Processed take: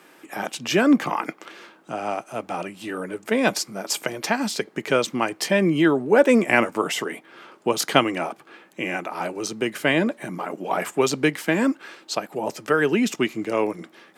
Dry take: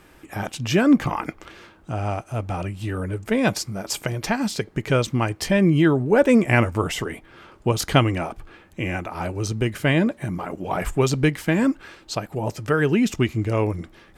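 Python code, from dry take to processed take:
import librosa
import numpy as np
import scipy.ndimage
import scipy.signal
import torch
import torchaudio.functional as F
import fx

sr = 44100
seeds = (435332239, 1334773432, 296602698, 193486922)

y = scipy.signal.sosfilt(scipy.signal.bessel(8, 280.0, 'highpass', norm='mag', fs=sr, output='sos'), x)
y = F.gain(torch.from_numpy(y), 2.0).numpy()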